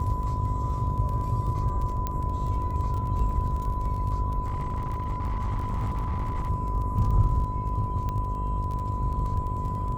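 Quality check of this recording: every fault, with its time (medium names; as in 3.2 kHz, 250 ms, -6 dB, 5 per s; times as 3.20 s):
buzz 50 Hz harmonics 14 -32 dBFS
crackle 19 per s -33 dBFS
whine 1 kHz -32 dBFS
2.07 s: pop -16 dBFS
4.46–6.50 s: clipped -24.5 dBFS
8.09 s: pop -20 dBFS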